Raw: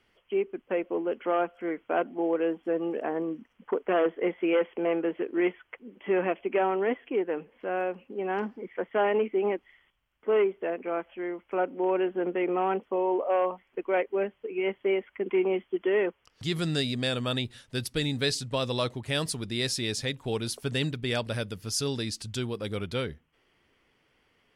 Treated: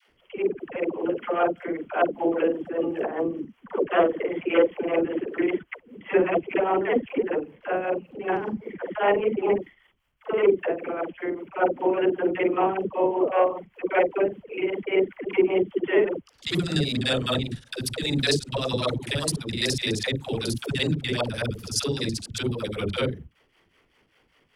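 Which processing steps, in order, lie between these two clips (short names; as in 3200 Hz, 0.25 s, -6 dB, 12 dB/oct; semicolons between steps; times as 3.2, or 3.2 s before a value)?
local time reversal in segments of 42 ms; tremolo triangle 5.1 Hz, depth 80%; dispersion lows, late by 94 ms, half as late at 440 Hz; gain +8 dB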